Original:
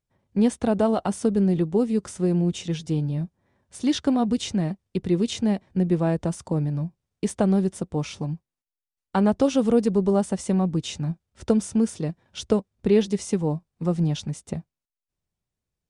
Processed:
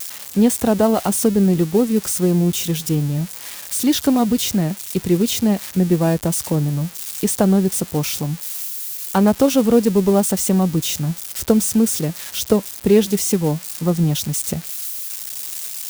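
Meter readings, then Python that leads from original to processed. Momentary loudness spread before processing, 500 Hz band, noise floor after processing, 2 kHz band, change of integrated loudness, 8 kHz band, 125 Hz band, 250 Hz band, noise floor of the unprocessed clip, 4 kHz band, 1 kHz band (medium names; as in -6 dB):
10 LU, +5.5 dB, -36 dBFS, +7.5 dB, +6.0 dB, +15.5 dB, +5.5 dB, +5.5 dB, under -85 dBFS, +9.5 dB, +5.5 dB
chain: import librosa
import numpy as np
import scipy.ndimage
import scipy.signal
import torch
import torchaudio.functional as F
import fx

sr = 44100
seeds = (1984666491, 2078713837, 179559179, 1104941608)

y = x + 0.5 * 10.0 ** (-23.0 / 20.0) * np.diff(np.sign(x), prepend=np.sign(x[:1]))
y = y * 10.0 ** (5.5 / 20.0)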